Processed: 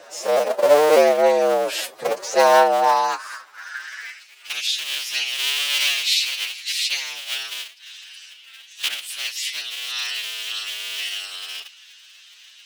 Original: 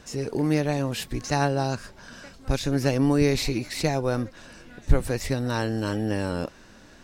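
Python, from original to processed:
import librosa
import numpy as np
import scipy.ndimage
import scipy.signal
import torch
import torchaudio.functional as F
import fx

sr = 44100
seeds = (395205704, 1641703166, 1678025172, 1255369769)

y = fx.cycle_switch(x, sr, every=2, mode='inverted')
y = fx.filter_sweep_highpass(y, sr, from_hz=570.0, to_hz=3000.0, start_s=1.35, end_s=2.57, q=3.7)
y = fx.stretch_vocoder(y, sr, factor=1.8)
y = y * librosa.db_to_amplitude(5.5)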